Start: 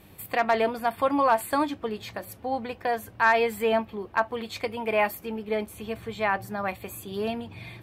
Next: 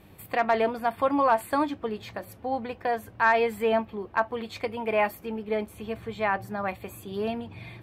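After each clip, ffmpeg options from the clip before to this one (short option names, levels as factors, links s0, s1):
-af "highshelf=f=3500:g=-7"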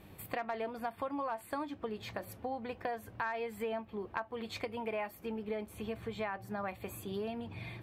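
-af "acompressor=threshold=0.0224:ratio=6,volume=0.794"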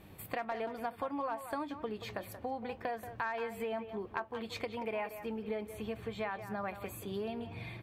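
-filter_complex "[0:a]asplit=2[s0][s1];[s1]adelay=180,highpass=300,lowpass=3400,asoftclip=type=hard:threshold=0.0376,volume=0.316[s2];[s0][s2]amix=inputs=2:normalize=0"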